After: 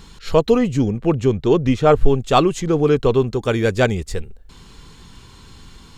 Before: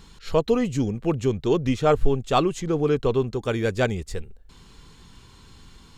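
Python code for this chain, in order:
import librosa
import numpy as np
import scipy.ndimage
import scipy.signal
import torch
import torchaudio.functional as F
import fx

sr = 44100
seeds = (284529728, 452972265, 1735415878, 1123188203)

y = fx.high_shelf(x, sr, hz=3800.0, db=-6.5, at=(0.58, 2.06))
y = F.gain(torch.from_numpy(y), 6.0).numpy()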